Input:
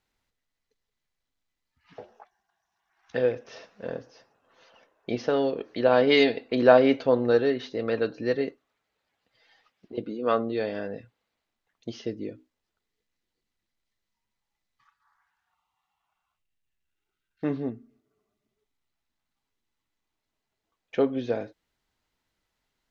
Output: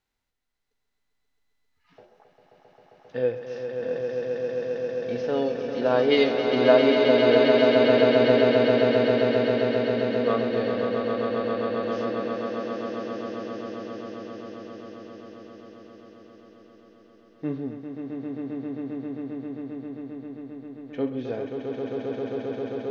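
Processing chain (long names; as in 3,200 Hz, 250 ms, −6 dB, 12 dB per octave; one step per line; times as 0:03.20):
echo that builds up and dies away 133 ms, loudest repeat 8, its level −6.5 dB
harmonic and percussive parts rebalanced percussive −10 dB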